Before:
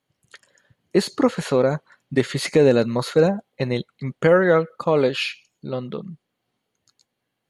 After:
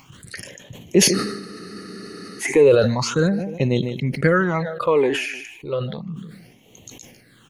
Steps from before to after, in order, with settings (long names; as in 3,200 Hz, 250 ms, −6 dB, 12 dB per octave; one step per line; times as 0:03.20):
in parallel at −2 dB: upward compression, threshold −18 dBFS
on the sum: dynamic equaliser 6,100 Hz, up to +7 dB, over −50 dBFS, Q 6
on a send: repeating echo 152 ms, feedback 31%, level −21 dB
on the sum: all-pass phaser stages 8, 0.33 Hz, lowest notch 150–1,500 Hz
frozen spectrum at 0:01.17, 1.23 s
level that may fall only so fast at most 54 dB per second
level −2.5 dB